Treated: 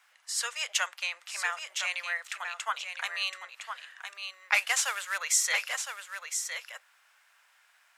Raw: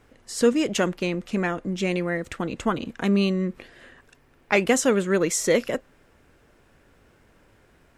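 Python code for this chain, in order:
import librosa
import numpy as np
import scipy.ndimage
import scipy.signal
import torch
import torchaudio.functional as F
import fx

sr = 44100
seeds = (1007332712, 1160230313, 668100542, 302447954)

p1 = fx.cvsd(x, sr, bps=64000, at=(4.54, 5.18))
p2 = scipy.signal.sosfilt(scipy.signal.bessel(8, 1400.0, 'highpass', norm='mag', fs=sr, output='sos'), p1)
p3 = p2 + fx.echo_single(p2, sr, ms=1011, db=-7.5, dry=0)
y = p3 * 10.0 ** (1.5 / 20.0)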